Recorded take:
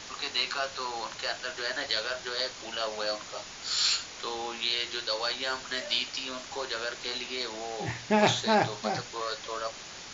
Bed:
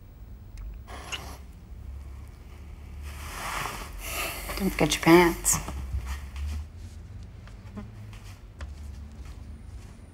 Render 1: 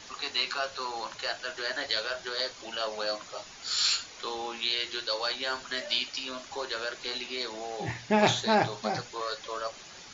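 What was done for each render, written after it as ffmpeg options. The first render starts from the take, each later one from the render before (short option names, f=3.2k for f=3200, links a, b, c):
-af "afftdn=nr=7:nf=-44"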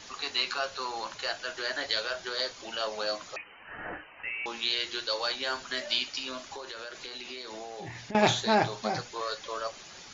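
-filter_complex "[0:a]asettb=1/sr,asplit=3[a][b][c];[a]atrim=end=3.364[d];[b]atrim=start=3.36:end=4.46,asetpts=PTS-STARTPTS,afade=t=in:d=0.004:c=qsin,afade=t=out:st=1.096:d=0.004:c=qsin,lowpass=f=2.6k:t=q:w=0.5098,lowpass=f=2.6k:t=q:w=0.6013,lowpass=f=2.6k:t=q:w=0.9,lowpass=f=2.6k:t=q:w=2.563,afreqshift=-3100[e];[c]atrim=start=4.456[f];[d][e]acrossfade=d=0.004:c1=hsin:c2=qsin[g];[g][f]acrossfade=d=0.004:c1=qsin:c2=hsin,asettb=1/sr,asplit=3[h][i][j];[h]atrim=end=6.384[k];[i]atrim=start=6.38:end=8.15,asetpts=PTS-STARTPTS,afade=t=in:d=0.004:c=qsin,afade=t=out:st=1.766:d=0.004:c=qsin,acompressor=threshold=-36dB:ratio=10:attack=3.2:release=140:knee=1:detection=peak[l];[j]atrim=start=8.146[m];[k][l]acrossfade=d=0.004:c1=hsin:c2=qsin[n];[n][m]acrossfade=d=0.004:c1=qsin:c2=hsin"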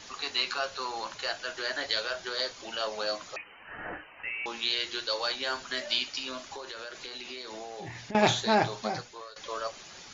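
-filter_complex "[0:a]asplit=2[a][b];[a]atrim=end=9.36,asetpts=PTS-STARTPTS,afade=t=out:st=8.8:d=0.56:silence=0.112202[c];[b]atrim=start=9.36,asetpts=PTS-STARTPTS,afade=t=in:d=0.004:c=hsin:silence=0.112202[d];[c][d]concat=n=2:v=0:a=1"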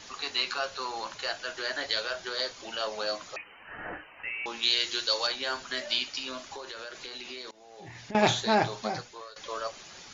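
-filter_complex "[0:a]asettb=1/sr,asplit=3[a][b][c];[a]atrim=end=4.634[d];[b]atrim=start=4.63:end=5.27,asetpts=PTS-STARTPTS,afade=t=in:d=0.004:c=qsin,afade=t=out:st=0.636:d=0.004:c=qsin,highshelf=f=5.1k:g=12[e];[c]atrim=start=5.266[f];[d][e]acrossfade=d=0.004:c1=hsin:c2=qsin[g];[g][f]acrossfade=d=0.004:c1=qsin:c2=hsin,asplit=2[h][i];[h]atrim=end=7.51,asetpts=PTS-STARTPTS,afade=t=out:st=7.506:d=0.004:c=hsin:silence=0.0630957[j];[i]atrim=start=7.51,asetpts=PTS-STARTPTS,afade=t=in:d=0.66:silence=0.0630957[k];[j][k]concat=n=2:v=0:a=1"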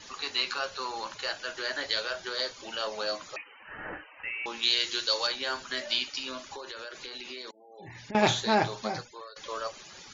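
-af "bandreject=f=700:w=13,afftfilt=real='re*gte(hypot(re,im),0.00316)':imag='im*gte(hypot(re,im),0.00316)':win_size=1024:overlap=0.75"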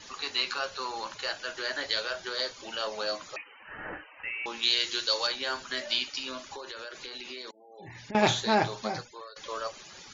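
-af anull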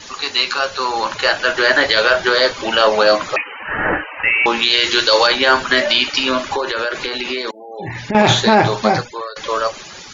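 -filter_complex "[0:a]acrossover=split=3100[a][b];[a]dynaudnorm=f=450:g=5:m=10dB[c];[c][b]amix=inputs=2:normalize=0,alimiter=level_in=12dB:limit=-1dB:release=50:level=0:latency=1"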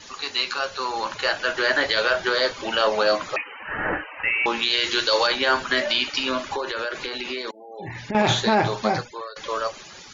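-af "volume=-7.5dB"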